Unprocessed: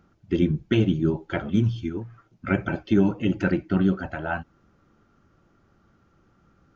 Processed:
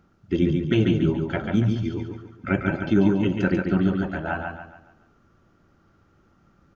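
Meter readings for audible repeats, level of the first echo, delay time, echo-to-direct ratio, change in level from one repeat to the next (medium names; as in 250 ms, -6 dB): 4, -4.5 dB, 141 ms, -4.0 dB, -8.0 dB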